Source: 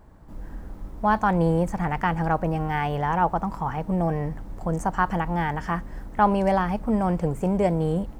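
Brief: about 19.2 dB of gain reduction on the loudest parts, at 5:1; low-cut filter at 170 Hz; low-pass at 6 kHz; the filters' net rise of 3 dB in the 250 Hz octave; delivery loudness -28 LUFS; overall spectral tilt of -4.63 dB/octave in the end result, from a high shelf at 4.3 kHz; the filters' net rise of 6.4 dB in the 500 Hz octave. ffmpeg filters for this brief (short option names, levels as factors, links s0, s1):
-af "highpass=170,lowpass=6000,equalizer=f=250:t=o:g=6,equalizer=f=500:t=o:g=6.5,highshelf=f=4300:g=-7,acompressor=threshold=0.02:ratio=5,volume=2.99"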